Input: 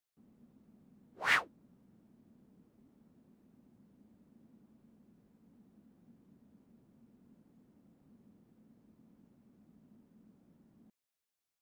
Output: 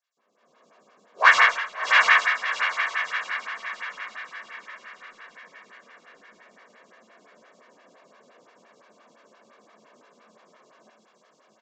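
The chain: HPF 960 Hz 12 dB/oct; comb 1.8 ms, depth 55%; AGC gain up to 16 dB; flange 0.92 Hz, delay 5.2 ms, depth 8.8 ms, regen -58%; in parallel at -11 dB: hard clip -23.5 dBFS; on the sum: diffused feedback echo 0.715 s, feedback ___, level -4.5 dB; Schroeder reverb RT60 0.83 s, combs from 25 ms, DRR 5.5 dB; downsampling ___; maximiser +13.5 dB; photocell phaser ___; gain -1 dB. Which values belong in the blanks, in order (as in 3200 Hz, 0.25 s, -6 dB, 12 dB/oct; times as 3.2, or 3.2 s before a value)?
47%, 16000 Hz, 5.8 Hz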